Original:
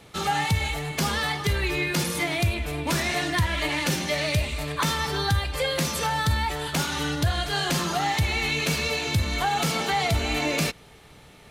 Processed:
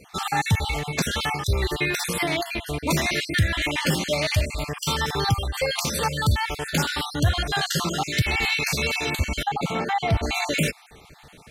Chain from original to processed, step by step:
time-frequency cells dropped at random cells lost 40%
0:09.43–0:10.23: low-pass filter 1,500 Hz 6 dB per octave
level +3.5 dB

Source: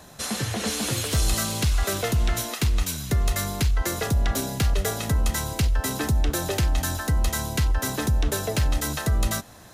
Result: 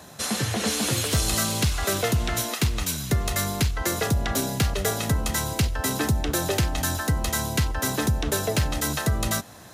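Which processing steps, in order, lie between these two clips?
high-pass filter 75 Hz
level +2 dB

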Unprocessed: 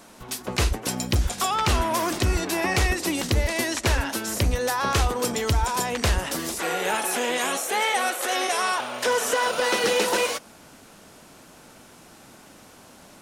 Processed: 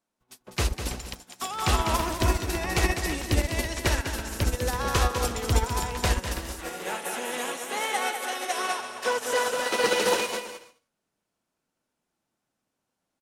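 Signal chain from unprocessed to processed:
0:00.98–0:01.42: Bessel high-pass filter 760 Hz
on a send: bouncing-ball delay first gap 200 ms, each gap 0.65×, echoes 5
on the sum: expander for the loud parts 2.5 to 1, over −41 dBFS
level +1 dB

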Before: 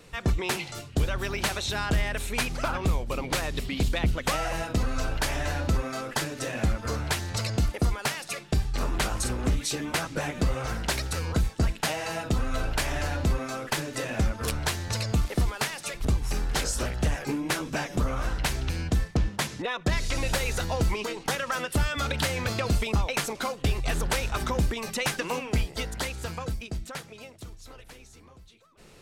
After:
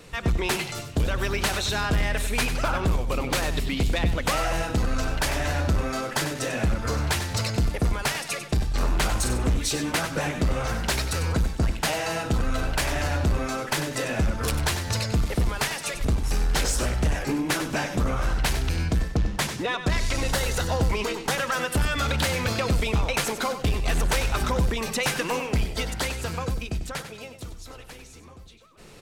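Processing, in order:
0:20.20–0:20.85: notch filter 2,400 Hz, Q 5.5
soft clipping −22 dBFS, distortion −16 dB
on a send: repeating echo 96 ms, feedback 24%, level −10 dB
on the sum: level +4.5 dB

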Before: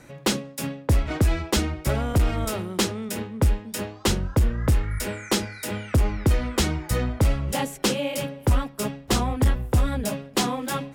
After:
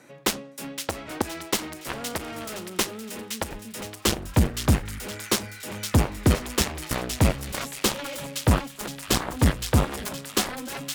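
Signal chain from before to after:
high-pass filter 210 Hz 12 dB per octave, from 0:03.51 44 Hz
harmonic generator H 7 −12 dB, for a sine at −8.5 dBFS
delay with a high-pass on its return 516 ms, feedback 40%, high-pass 2,100 Hz, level −7 dB

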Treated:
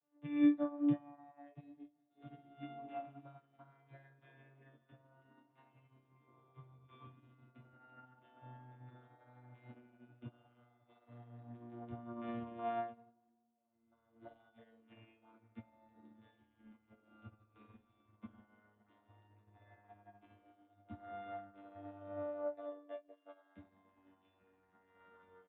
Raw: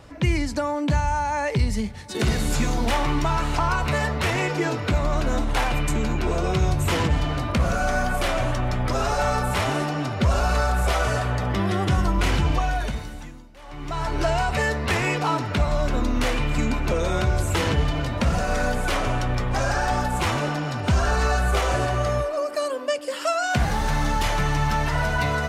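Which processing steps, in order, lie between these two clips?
vocoder with a gliding carrier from D3, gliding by −8 semitones
resonators tuned to a chord A#3 major, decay 0.36 s
tape delay 189 ms, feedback 64%, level −13.5 dB, low-pass 1,500 Hz
downsampling to 8,000 Hz
double-tracking delay 24 ms −11 dB
expander for the loud parts 2.5 to 1, over −55 dBFS
level +11 dB

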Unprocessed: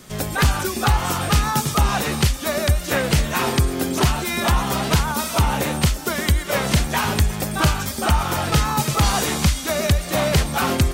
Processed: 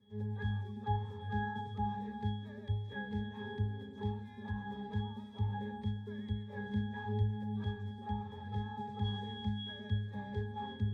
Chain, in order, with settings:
resonances in every octave G#, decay 0.74 s

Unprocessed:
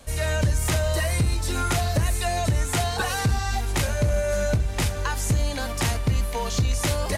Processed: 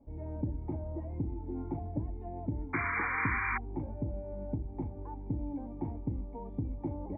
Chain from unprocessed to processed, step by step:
formant resonators in series u
sound drawn into the spectrogram noise, 0:02.73–0:03.58, 930–2,400 Hz −33 dBFS

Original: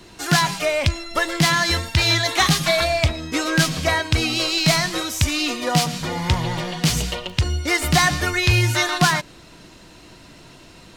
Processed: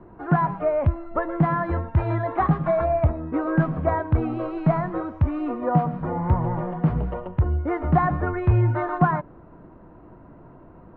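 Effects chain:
low-pass filter 1,200 Hz 24 dB per octave

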